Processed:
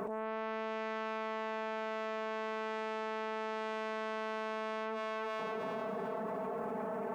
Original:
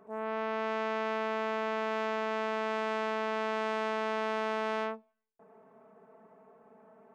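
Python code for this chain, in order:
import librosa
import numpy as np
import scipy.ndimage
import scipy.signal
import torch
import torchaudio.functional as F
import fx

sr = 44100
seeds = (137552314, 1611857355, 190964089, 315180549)

p1 = x + fx.echo_thinned(x, sr, ms=331, feedback_pct=41, hz=200.0, wet_db=-14.5, dry=0)
p2 = fx.env_flatten(p1, sr, amount_pct=100)
y = p2 * librosa.db_to_amplitude(-6.5)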